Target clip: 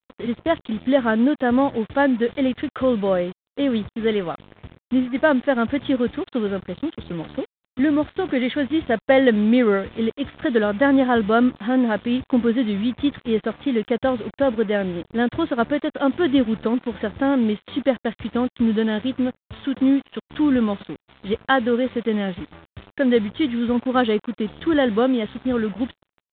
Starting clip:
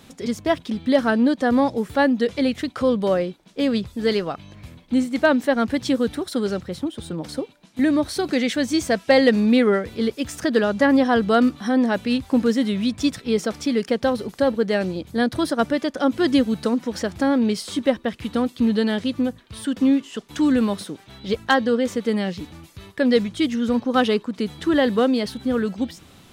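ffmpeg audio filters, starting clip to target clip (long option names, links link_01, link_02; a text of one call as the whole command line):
ffmpeg -i in.wav -af "equalizer=frequency=2600:width=7.6:gain=-7.5,aresample=8000,acrusher=bits=5:mix=0:aa=0.5,aresample=44100" -ar 8000 -c:a adpcm_g726 -b:a 40k out.wav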